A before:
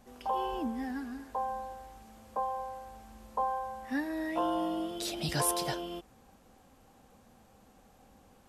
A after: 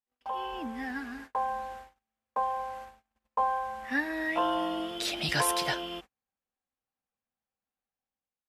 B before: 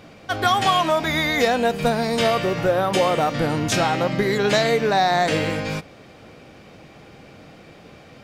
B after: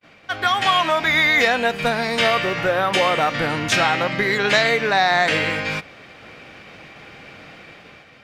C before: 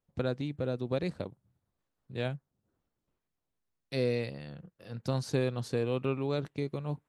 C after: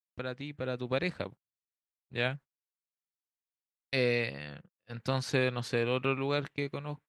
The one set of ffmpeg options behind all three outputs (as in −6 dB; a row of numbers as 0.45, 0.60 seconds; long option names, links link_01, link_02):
-af "agate=range=-38dB:threshold=-46dB:ratio=16:detection=peak,dynaudnorm=framelen=260:gausssize=5:maxgain=7.5dB,equalizer=frequency=2100:width=0.57:gain=12,volume=-9dB"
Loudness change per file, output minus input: +3.0, +2.0, +1.0 LU